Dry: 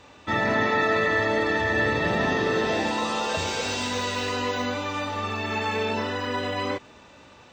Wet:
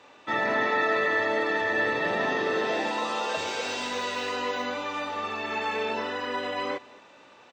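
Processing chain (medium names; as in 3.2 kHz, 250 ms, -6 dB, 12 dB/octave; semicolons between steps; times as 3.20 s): high-pass 130 Hz 12 dB/octave; tone controls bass -10 dB, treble -5 dB; delay 221 ms -22.5 dB; trim -1.5 dB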